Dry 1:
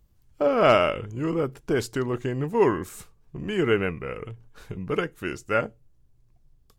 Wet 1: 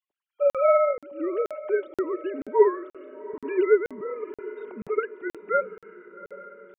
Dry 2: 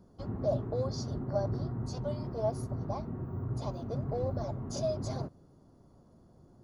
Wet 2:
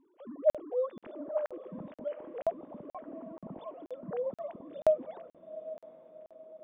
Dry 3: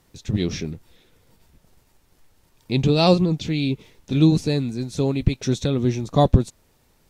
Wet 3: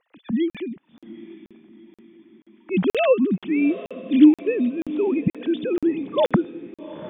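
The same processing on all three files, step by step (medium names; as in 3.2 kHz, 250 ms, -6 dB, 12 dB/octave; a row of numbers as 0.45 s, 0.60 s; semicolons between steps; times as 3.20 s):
formants replaced by sine waves; echo that smears into a reverb 802 ms, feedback 49%, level -15.5 dB; crackling interface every 0.48 s, samples 2048, zero, from 0.50 s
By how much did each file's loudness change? 0.0 LU, -0.5 LU, 0.0 LU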